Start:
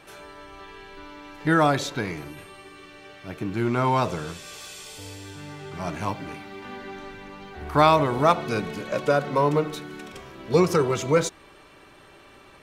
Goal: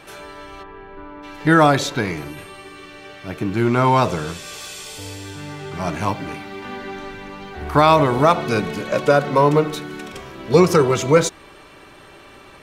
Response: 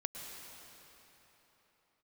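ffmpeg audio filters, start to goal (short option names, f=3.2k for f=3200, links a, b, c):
-filter_complex "[0:a]asplit=3[a][b][c];[a]afade=t=out:st=0.62:d=0.02[d];[b]lowpass=1.4k,afade=t=in:st=0.62:d=0.02,afade=t=out:st=1.22:d=0.02[e];[c]afade=t=in:st=1.22:d=0.02[f];[d][e][f]amix=inputs=3:normalize=0,alimiter=level_in=7.5dB:limit=-1dB:release=50:level=0:latency=1,volume=-1dB"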